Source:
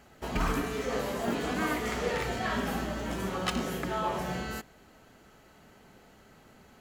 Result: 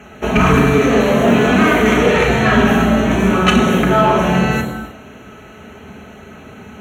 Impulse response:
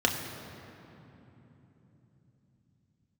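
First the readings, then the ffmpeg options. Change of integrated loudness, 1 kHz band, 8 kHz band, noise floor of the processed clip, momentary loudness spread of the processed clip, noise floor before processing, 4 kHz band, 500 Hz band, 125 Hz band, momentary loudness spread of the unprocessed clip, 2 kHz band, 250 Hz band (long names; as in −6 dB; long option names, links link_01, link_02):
+19.0 dB, +17.0 dB, +12.5 dB, −39 dBFS, 4 LU, −58 dBFS, +16.0 dB, +19.0 dB, +20.5 dB, 4 LU, +18.5 dB, +21.0 dB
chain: -filter_complex "[0:a]asuperstop=centerf=4900:order=12:qfactor=3.6[link_01];[1:a]atrim=start_sample=2205,afade=type=out:start_time=0.33:duration=0.01,atrim=end_sample=14994,asetrate=37044,aresample=44100[link_02];[link_01][link_02]afir=irnorm=-1:irlink=0,acontrast=36"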